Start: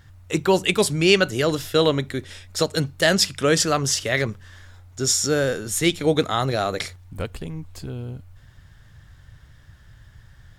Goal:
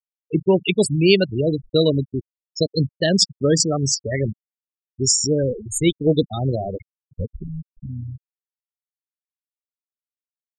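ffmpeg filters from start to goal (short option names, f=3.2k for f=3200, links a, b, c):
-af "aeval=exprs='sgn(val(0))*max(abs(val(0))-0.00841,0)':c=same,equalizer=f=1.3k:w=0.6:g=-12.5,afftfilt=real='re*gte(hypot(re,im),0.1)':imag='im*gte(hypot(re,im),0.1)':win_size=1024:overlap=0.75,volume=6dB"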